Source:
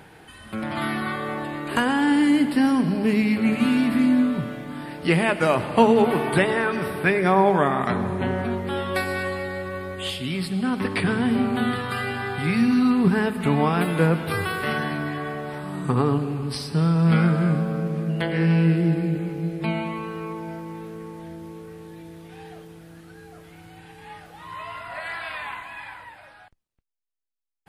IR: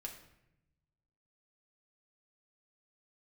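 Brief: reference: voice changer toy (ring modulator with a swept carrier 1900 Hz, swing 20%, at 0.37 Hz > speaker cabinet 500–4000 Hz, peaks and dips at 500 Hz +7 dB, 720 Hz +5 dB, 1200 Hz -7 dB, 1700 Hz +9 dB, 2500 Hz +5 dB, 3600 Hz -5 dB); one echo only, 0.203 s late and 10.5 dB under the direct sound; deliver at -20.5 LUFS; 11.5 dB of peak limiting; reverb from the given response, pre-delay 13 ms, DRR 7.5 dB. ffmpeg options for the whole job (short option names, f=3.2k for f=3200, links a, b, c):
-filter_complex "[0:a]alimiter=limit=-14.5dB:level=0:latency=1,aecho=1:1:203:0.299,asplit=2[a][b];[1:a]atrim=start_sample=2205,adelay=13[c];[b][c]afir=irnorm=-1:irlink=0,volume=-4.5dB[d];[a][d]amix=inputs=2:normalize=0,aeval=exprs='val(0)*sin(2*PI*1900*n/s+1900*0.2/0.37*sin(2*PI*0.37*n/s))':c=same,highpass=500,equalizer=f=500:t=q:w=4:g=7,equalizer=f=720:t=q:w=4:g=5,equalizer=f=1.2k:t=q:w=4:g=-7,equalizer=f=1.7k:t=q:w=4:g=9,equalizer=f=2.5k:t=q:w=4:g=5,equalizer=f=3.6k:t=q:w=4:g=-5,lowpass=f=4k:w=0.5412,lowpass=f=4k:w=1.3066,volume=-2dB"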